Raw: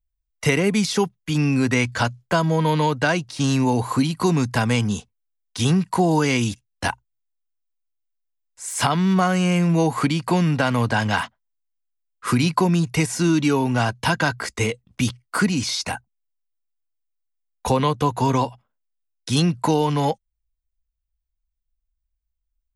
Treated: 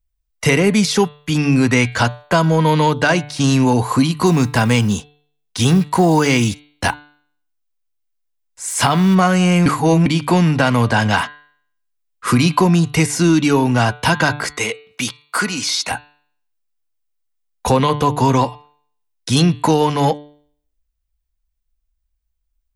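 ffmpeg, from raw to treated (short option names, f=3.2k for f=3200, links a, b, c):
-filter_complex "[0:a]asettb=1/sr,asplit=3[a][b][c];[a]atrim=end=4.264[d];[b]atrim=start=4.26:end=9.15,asetpts=PTS-STARTPTS,afade=t=in:d=0.004:c=qsin,afade=t=out:st=4.886:d=0.004:c=qsin,acrusher=bits=8:mode=log:mix=0:aa=0.000001[e];[c]atrim=start=9.146[f];[d][e]acrossfade=d=0.004:c1=hsin:c2=qsin[g];[g][f]acrossfade=d=0.004:c1=qsin:c2=hsin,asettb=1/sr,asplit=3[h][i][j];[h]atrim=end=14.584[k];[i]atrim=start=14.58:end=15.91,asetpts=PTS-STARTPTS,afade=t=in:d=0.004:c=qsin,afade=t=out:st=1.326:d=0.004:c=qsin,highpass=f=670:p=1[l];[j]atrim=start=15.906[m];[k][l]acrossfade=d=0.004:c1=hsin:c2=qsin[n];[n][m]acrossfade=d=0.004:c1=qsin:c2=hsin,asplit=3[o][p][q];[o]atrim=end=9.662[r];[p]atrim=start=9.658:end=10.062,asetpts=PTS-STARTPTS,areverse[s];[q]atrim=start=10.058[t];[r][s]acrossfade=d=0.004:c1=hsin:c2=hsin[u];[u][t]acrossfade=d=0.004:c1=hsin:c2=hsin,bandreject=f=147.2:t=h:w=4,bandreject=f=294.4:t=h:w=4,bandreject=f=441.6:t=h:w=4,bandreject=f=588.8:t=h:w=4,bandreject=f=736:t=h:w=4,bandreject=f=883.2:t=h:w=4,bandreject=f=1.0304k:t=h:w=4,bandreject=f=1.1776k:t=h:w=4,bandreject=f=1.3248k:t=h:w=4,bandreject=f=1.472k:t=h:w=4,bandreject=f=1.6192k:t=h:w=4,bandreject=f=1.7664k:t=h:w=4,bandreject=f=1.9136k:t=h:w=4,bandreject=f=2.0608k:t=h:w=4,bandreject=f=2.208k:t=h:w=4,bandreject=f=2.3552k:t=h:w=4,bandreject=f=2.5024k:t=h:w=4,bandreject=f=2.6496k:t=h:w=4,bandreject=f=2.7968k:t=h:w=4,bandreject=f=2.944k:t=h:w=4,bandreject=f=3.0912k:t=h:w=4,bandreject=f=3.2384k:t=h:w=4,bandreject=f=3.3856k:t=h:w=4,bandreject=f=3.5328k:t=h:w=4,bandreject=f=3.68k:t=h:w=4,bandreject=f=3.8272k:t=h:w=4,bandreject=f=3.9744k:t=h:w=4,bandreject=f=4.1216k:t=h:w=4,bandreject=f=4.2688k:t=h:w=4,bandreject=f=4.416k:t=h:w=4,acontrast=54"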